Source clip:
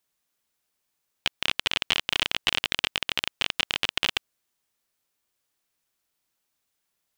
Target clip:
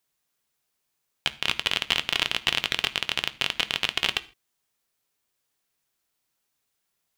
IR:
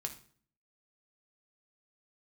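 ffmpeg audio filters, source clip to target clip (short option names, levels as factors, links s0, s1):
-filter_complex "[0:a]asplit=2[s0][s1];[1:a]atrim=start_sample=2205,afade=t=out:st=0.21:d=0.01,atrim=end_sample=9702[s2];[s1][s2]afir=irnorm=-1:irlink=0,volume=0.891[s3];[s0][s3]amix=inputs=2:normalize=0,volume=0.631"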